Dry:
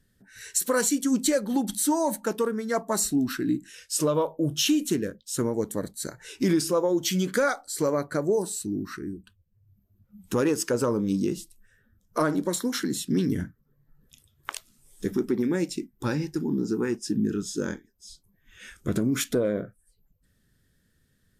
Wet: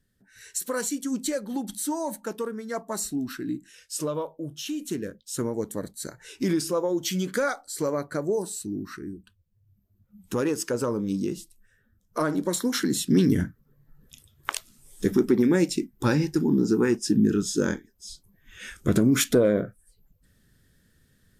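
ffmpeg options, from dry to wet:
-af "volume=3.98,afade=t=out:st=4.11:d=0.51:silence=0.446684,afade=t=in:st=4.62:d=0.54:silence=0.316228,afade=t=in:st=12.18:d=1.05:silence=0.446684"

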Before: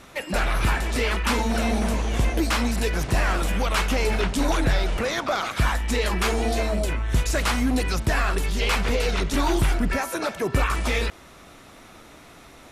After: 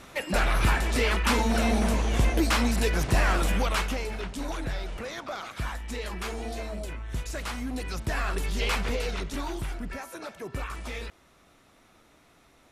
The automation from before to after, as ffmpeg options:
-af "volume=2,afade=t=out:st=3.53:d=0.54:silence=0.316228,afade=t=in:st=7.72:d=0.89:silence=0.446684,afade=t=out:st=8.61:d=0.94:silence=0.375837"

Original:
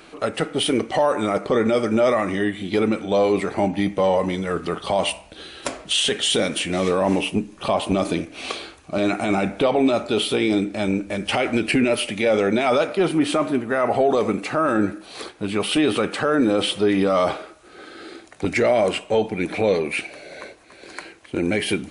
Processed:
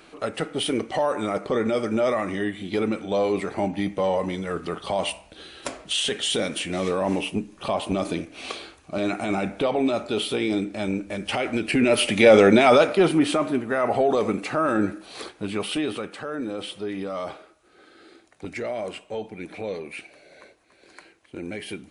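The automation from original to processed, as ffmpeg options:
-af "volume=2,afade=t=in:st=11.7:d=0.58:silence=0.298538,afade=t=out:st=12.28:d=1.12:silence=0.375837,afade=t=out:st=15.29:d=0.81:silence=0.334965"

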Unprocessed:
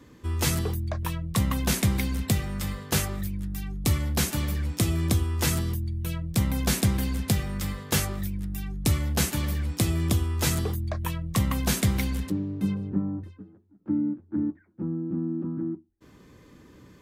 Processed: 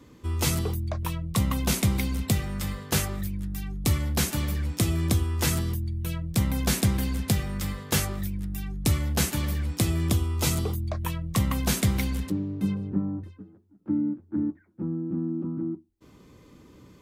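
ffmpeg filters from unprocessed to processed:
-af "asetnsamples=n=441:p=0,asendcmd='2.32 equalizer g -0.5;10.17 equalizer g -12;10.94 equalizer g -2;15.29 equalizer g -10.5',equalizer=f=1700:t=o:w=0.21:g=-7"

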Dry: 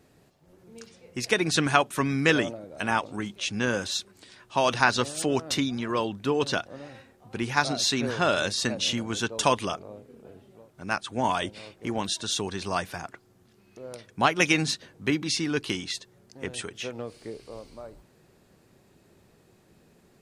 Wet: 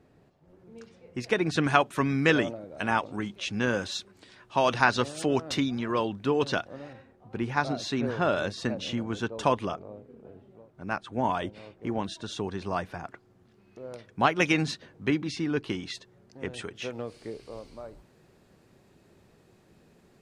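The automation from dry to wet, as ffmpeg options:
-af "asetnsamples=n=441:p=0,asendcmd='1.64 lowpass f 3100;6.93 lowpass f 1200;13.05 lowpass f 2300;15.22 lowpass f 1300;15.83 lowpass f 2400;16.82 lowpass f 6200',lowpass=f=1600:p=1"

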